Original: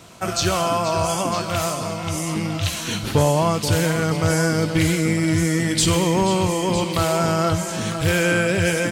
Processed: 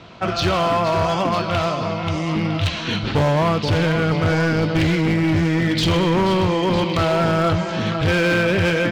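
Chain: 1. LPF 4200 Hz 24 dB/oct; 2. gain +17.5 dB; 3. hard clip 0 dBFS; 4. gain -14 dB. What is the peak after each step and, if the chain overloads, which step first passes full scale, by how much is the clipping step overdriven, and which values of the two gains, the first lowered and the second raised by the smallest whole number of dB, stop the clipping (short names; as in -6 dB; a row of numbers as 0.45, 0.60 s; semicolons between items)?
-9.5, +8.0, 0.0, -14.0 dBFS; step 2, 8.0 dB; step 2 +9.5 dB, step 4 -6 dB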